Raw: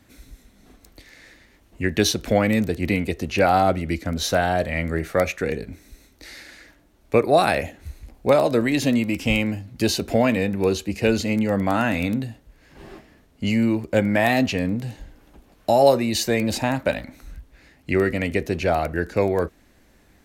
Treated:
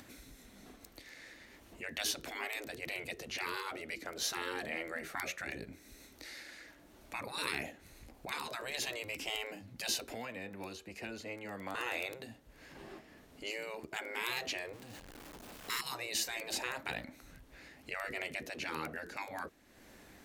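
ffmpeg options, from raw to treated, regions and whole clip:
-filter_complex "[0:a]asettb=1/sr,asplit=3[a][b][c];[a]atrim=end=10.044[d];[b]atrim=start=10.04:end=11.75,asetpts=PTS-STARTPTS,afade=t=in:d=0.004:c=qsin,afade=t=out:st=1.706:d=0.004:c=qsin,equalizer=f=170:t=o:w=2.9:g=-8,acrossover=split=350|2000[e][f][g];[e]acompressor=threshold=-36dB:ratio=4[h];[f]acompressor=threshold=-33dB:ratio=4[i];[g]acompressor=threshold=-45dB:ratio=4[j];[h][i][j]amix=inputs=3:normalize=0[k];[c]atrim=start=11.746[l];[d][k]acrossfade=d=0.004:c1=hsin:c2=qsin[m];[m][l]acrossfade=d=0.004:c1=qsin:c2=hsin,asettb=1/sr,asplit=3[n][o][p];[n]atrim=end=14.734[q];[o]atrim=start=14.73:end=15.81,asetpts=PTS-STARTPTS,afade=t=in:d=0.004:c=qsin,afade=t=out:st=1.076:d=0.004:c=qsin,aeval=exprs='val(0)+0.5*0.0299*sgn(val(0))':c=same,acontrast=68,agate=range=-14dB:threshold=-14dB:ratio=16:release=100:detection=peak[r];[p]atrim=start=15.806[s];[q][r]acrossfade=d=0.004:c1=hsin:c2=qsin[t];[t][s]acrossfade=d=0.004:c1=qsin:c2=hsin,afftfilt=real='re*lt(hypot(re,im),0.178)':imag='im*lt(hypot(re,im),0.178)':win_size=1024:overlap=0.75,lowshelf=f=120:g=-11,acompressor=mode=upward:threshold=-39dB:ratio=2.5,volume=-7.5dB"

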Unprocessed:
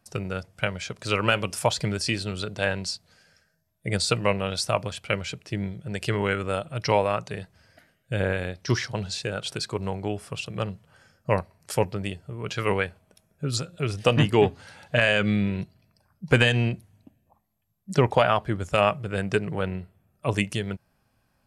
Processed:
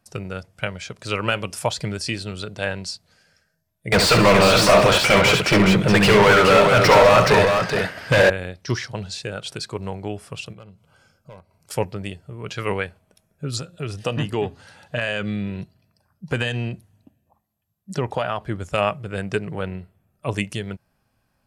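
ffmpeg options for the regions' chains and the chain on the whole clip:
-filter_complex "[0:a]asettb=1/sr,asplit=3[a][b][c];[a]atrim=end=3.924[d];[b]atrim=start=3.92:end=8.3,asetpts=PTS-STARTPTS,afade=t=in:d=0.004:c=qsin,afade=t=out:st=4.376:d=0.004:c=qsin,asplit=2[e][f];[f]highpass=f=720:p=1,volume=38dB,asoftclip=type=tanh:threshold=-6dB[g];[e][g]amix=inputs=2:normalize=0,lowpass=f=2.3k:p=1,volume=-6dB,aecho=1:1:68|199|421:0.473|0.2|0.562,atrim=end_sample=193158[h];[c]atrim=start=8.296[i];[d][h]acrossfade=d=0.004:c1=hsin:c2=qsin[j];[j][i]acrossfade=d=0.004:c1=qsin:c2=hsin,asettb=1/sr,asplit=3[k][l][m];[k]atrim=end=10.534[n];[l]atrim=start=10.53:end=11.71,asetpts=PTS-STARTPTS,afade=t=in:d=0.004:c=qsin,afade=t=out:st=1.176:d=0.004:c=qsin,acompressor=threshold=-51dB:ratio=2:attack=3.2:release=140:knee=1:detection=peak,asoftclip=type=hard:threshold=-33.5dB,asuperstop=centerf=1800:order=12:qfactor=5.9[o];[m]atrim=start=11.706[p];[n][o]acrossfade=d=0.004:c1=hsin:c2=qsin[q];[q][p]acrossfade=d=0.004:c1=qsin:c2=hsin,asettb=1/sr,asplit=3[r][s][t];[r]atrim=end=13.604[u];[s]atrim=start=13.6:end=18.41,asetpts=PTS-STARTPTS,afade=t=in:d=0.004:c=qsin,afade=t=out:st=4.806:d=0.004:c=qsin,bandreject=f=2.2k:w=13,acompressor=threshold=-26dB:ratio=1.5:attack=3.2:release=140:knee=1:detection=peak,highpass=40[v];[t]atrim=start=18.406[w];[u][v]acrossfade=d=0.004:c1=hsin:c2=qsin[x];[x][w]acrossfade=d=0.004:c1=qsin:c2=hsin"

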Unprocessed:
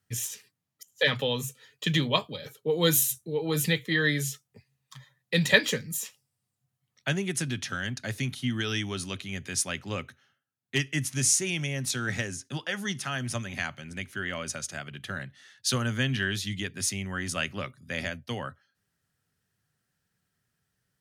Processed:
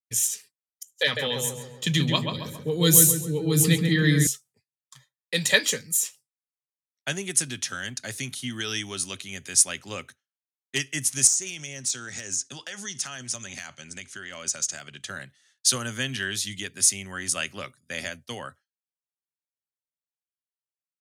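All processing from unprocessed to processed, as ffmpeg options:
-filter_complex "[0:a]asettb=1/sr,asplit=3[a][b][c];[a]atrim=end=1.034[d];[b]atrim=start=1.03:end=4.27,asetpts=PTS-STARTPTS,afade=t=in:d=0.004:c=qsin,afade=t=out:st=3.236:d=0.004:c=qsin,asubboost=boost=10:cutoff=240,asplit=2[e][f];[f]adelay=136,lowpass=f=1.9k:p=1,volume=-3.5dB,asplit=2[g][h];[h]adelay=136,lowpass=f=1.9k:p=1,volume=0.52,asplit=2[i][j];[j]adelay=136,lowpass=f=1.9k:p=1,volume=0.52,asplit=2[k][l];[l]adelay=136,lowpass=f=1.9k:p=1,volume=0.52,asplit=2[m][n];[n]adelay=136,lowpass=f=1.9k:p=1,volume=0.52,asplit=2[o][p];[p]adelay=136,lowpass=f=1.9k:p=1,volume=0.52,asplit=2[q][r];[r]adelay=136,lowpass=f=1.9k:p=1,volume=0.52[s];[e][g][i][k][m][o][q][s]amix=inputs=8:normalize=0,atrim=end_sample=142884[t];[c]atrim=start=4.266[u];[d][t]acrossfade=d=0.004:c1=hsin:c2=qsin[v];[v][u]acrossfade=d=0.004:c1=qsin:c2=hsin,asettb=1/sr,asplit=3[w][x][y];[w]atrim=end=11.274[z];[x]atrim=start=11.27:end=15.09,asetpts=PTS-STARTPTS,afade=t=in:d=0.004:c=qsin,afade=t=out:st=3.816:d=0.004:c=qsin,acompressor=threshold=-33dB:ratio=6:attack=3.2:release=140:knee=1:detection=peak,lowpass=f=6.9k:t=q:w=1.8,aeval=exprs='clip(val(0),-1,0.0422)':c=same[aa];[y]atrim=start=15.086[ab];[z][aa]acrossfade=d=0.004:c1=hsin:c2=qsin[ac];[ac][ab]acrossfade=d=0.004:c1=qsin:c2=hsin,equalizer=f=8.4k:w=0.77:g=10.5,agate=range=-33dB:threshold=-41dB:ratio=3:detection=peak,bass=f=250:g=-6,treble=f=4k:g=2,volume=-1dB"

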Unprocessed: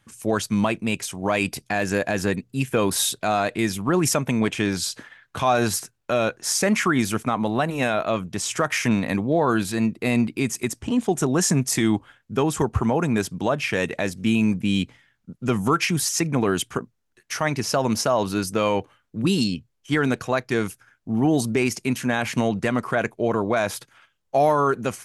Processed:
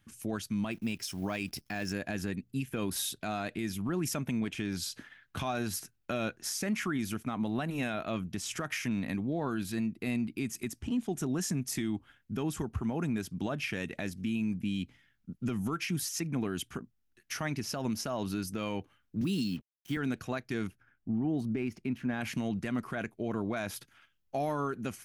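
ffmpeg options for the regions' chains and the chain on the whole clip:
-filter_complex "[0:a]asettb=1/sr,asplit=3[a][b][c];[a]atrim=end=0.714[d];[b]atrim=start=0.71:end=1.93,asetpts=PTS-STARTPTS,afade=t=in:d=0.004:c=qsin,afade=t=out:st=1.216:d=0.004:c=qsin,equalizer=f=5.3k:w=6.3:g=12.5,acrusher=bits=9:dc=4:mix=0:aa=0.000001[e];[c]atrim=start=1.926[f];[d][e]acrossfade=d=0.004:c1=hsin:c2=qsin[g];[g][f]acrossfade=d=0.004:c1=qsin:c2=hsin,asettb=1/sr,asplit=3[h][i][j];[h]atrim=end=19.214[k];[i]atrim=start=19.21:end=19.97,asetpts=PTS-STARTPTS,afade=t=in:d=0.004:c=qsin,afade=t=out:st=0.756:d=0.004:c=qsin,highpass=f=96:w=0.5412,highpass=f=96:w=1.3066,acrusher=bits=6:mix=0:aa=0.5[l];[j]atrim=start=19.966[m];[k][l]acrossfade=d=0.004:c1=hsin:c2=qsin[n];[n][m]acrossfade=d=0.004:c1=qsin:c2=hsin,asettb=1/sr,asplit=3[o][p][q];[o]atrim=end=20.674[r];[p]atrim=start=20.67:end=22.21,asetpts=PTS-STARTPTS,afade=t=in:d=0.004:c=qsin,afade=t=out:st=1.536:d=0.004:c=qsin,equalizer=f=7k:w=0.48:g=-14,adynamicsmooth=sensitivity=8:basefreq=7.1k[s];[q]atrim=start=22.206[t];[r][s]acrossfade=d=0.004:c1=hsin:c2=qsin[u];[u][t]acrossfade=d=0.004:c1=qsin:c2=hsin,equalizer=f=125:t=o:w=1:g=-5,equalizer=f=500:t=o:w=1:g=-10,equalizer=f=1k:t=o:w=1:g=-9,equalizer=f=2k:t=o:w=1:g=-4,equalizer=f=4k:t=o:w=1:g=-4,equalizer=f=8k:t=o:w=1:g=-9,alimiter=limit=-24dB:level=0:latency=1:release=257"

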